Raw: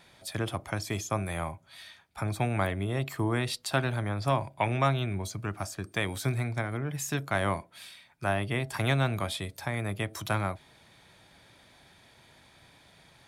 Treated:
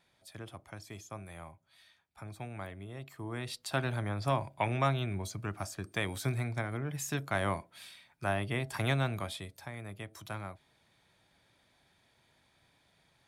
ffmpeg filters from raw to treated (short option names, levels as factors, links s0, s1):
-af "volume=0.668,afade=t=in:st=3.19:d=0.72:silence=0.298538,afade=t=out:st=8.89:d=0.84:silence=0.398107"